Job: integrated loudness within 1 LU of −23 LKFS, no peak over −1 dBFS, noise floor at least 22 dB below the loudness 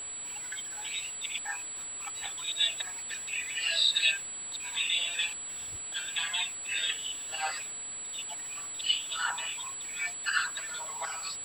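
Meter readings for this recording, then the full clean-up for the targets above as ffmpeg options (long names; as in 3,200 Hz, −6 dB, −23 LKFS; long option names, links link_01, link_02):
interfering tone 7,800 Hz; level of the tone −37 dBFS; background noise floor −40 dBFS; target noise floor −53 dBFS; integrated loudness −31.0 LKFS; sample peak −13.5 dBFS; target loudness −23.0 LKFS
→ -af "bandreject=frequency=7800:width=30"
-af "afftdn=noise_reduction=13:noise_floor=-40"
-af "volume=8dB"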